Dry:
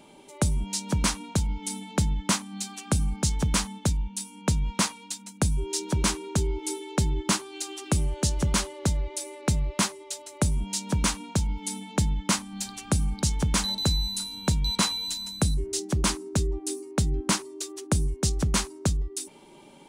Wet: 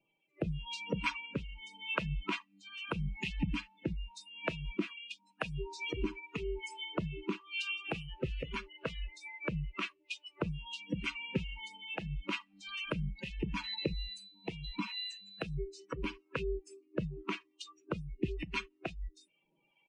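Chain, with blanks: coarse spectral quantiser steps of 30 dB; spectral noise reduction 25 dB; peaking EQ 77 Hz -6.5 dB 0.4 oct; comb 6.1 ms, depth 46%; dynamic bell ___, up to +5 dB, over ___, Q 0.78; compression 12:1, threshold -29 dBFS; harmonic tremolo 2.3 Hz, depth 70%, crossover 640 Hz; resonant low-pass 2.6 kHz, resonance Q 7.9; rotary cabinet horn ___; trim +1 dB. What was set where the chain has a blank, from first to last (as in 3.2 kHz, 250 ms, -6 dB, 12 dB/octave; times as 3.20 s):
440 Hz, -38 dBFS, 0.85 Hz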